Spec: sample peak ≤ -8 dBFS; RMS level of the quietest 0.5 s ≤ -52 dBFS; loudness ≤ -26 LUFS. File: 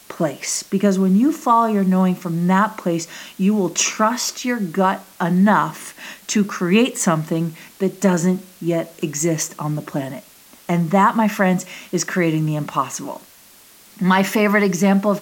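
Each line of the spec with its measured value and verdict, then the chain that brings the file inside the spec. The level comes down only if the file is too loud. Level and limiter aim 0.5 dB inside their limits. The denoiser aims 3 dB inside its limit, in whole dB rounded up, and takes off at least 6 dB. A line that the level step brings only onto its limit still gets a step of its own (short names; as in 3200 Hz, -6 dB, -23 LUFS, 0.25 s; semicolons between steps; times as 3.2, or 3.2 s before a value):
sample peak -2.5 dBFS: fail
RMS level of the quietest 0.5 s -47 dBFS: fail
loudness -19.0 LUFS: fail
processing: gain -7.5 dB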